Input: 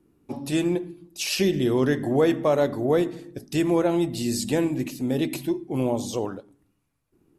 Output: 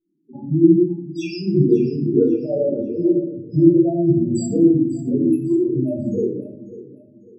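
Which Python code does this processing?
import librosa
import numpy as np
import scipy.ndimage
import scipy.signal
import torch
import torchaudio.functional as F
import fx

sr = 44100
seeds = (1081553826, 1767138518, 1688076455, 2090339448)

p1 = scipy.signal.sosfilt(scipy.signal.butter(2, 110.0, 'highpass', fs=sr, output='sos'), x)
p2 = fx.high_shelf(p1, sr, hz=7200.0, db=7.0)
p3 = fx.notch(p2, sr, hz=510.0, q=12.0)
p4 = fx.leveller(p3, sr, passes=3)
p5 = fx.spec_topn(p4, sr, count=4)
p6 = fx.phaser_stages(p5, sr, stages=4, low_hz=360.0, high_hz=2200.0, hz=2.0, feedback_pct=45)
p7 = p6 + fx.echo_feedback(p6, sr, ms=546, feedback_pct=34, wet_db=-16, dry=0)
p8 = fx.room_shoebox(p7, sr, seeds[0], volume_m3=830.0, walls='furnished', distance_m=5.2)
y = F.gain(torch.from_numpy(p8), -5.5).numpy()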